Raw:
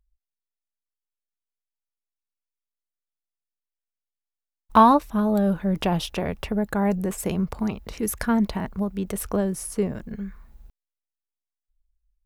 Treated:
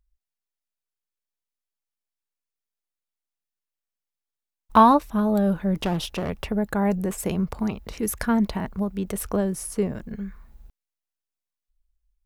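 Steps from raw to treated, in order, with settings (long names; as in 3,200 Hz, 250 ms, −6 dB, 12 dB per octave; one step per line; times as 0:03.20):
0:05.77–0:06.30: asymmetric clip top −27 dBFS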